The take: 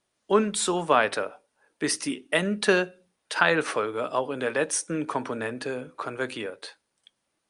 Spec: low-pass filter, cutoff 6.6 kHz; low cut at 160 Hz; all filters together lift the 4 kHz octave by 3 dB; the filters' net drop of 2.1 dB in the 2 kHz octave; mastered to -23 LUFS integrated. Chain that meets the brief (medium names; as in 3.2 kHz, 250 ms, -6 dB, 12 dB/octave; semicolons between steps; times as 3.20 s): high-pass 160 Hz; low-pass 6.6 kHz; peaking EQ 2 kHz -4 dB; peaking EQ 4 kHz +5.5 dB; trim +4.5 dB